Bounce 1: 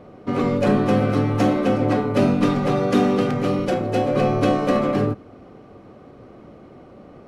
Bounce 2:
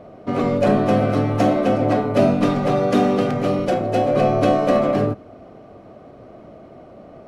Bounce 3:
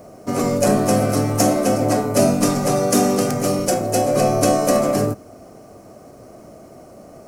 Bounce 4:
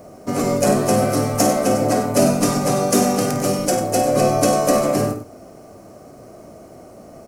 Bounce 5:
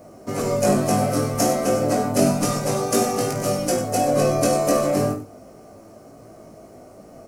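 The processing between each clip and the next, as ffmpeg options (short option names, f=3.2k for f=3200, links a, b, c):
-af "equalizer=f=650:w=6.8:g=13.5"
-af "aexciter=amount=13.3:drive=4.5:freq=5.3k"
-af "aecho=1:1:52.48|96.21:0.316|0.282"
-af "flanger=delay=18:depth=3.3:speed=0.33"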